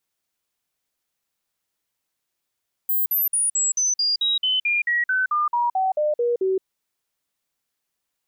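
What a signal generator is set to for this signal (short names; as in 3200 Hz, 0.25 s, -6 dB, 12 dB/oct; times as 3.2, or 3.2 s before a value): stepped sine 15300 Hz down, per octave 3, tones 17, 0.17 s, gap 0.05 s -18 dBFS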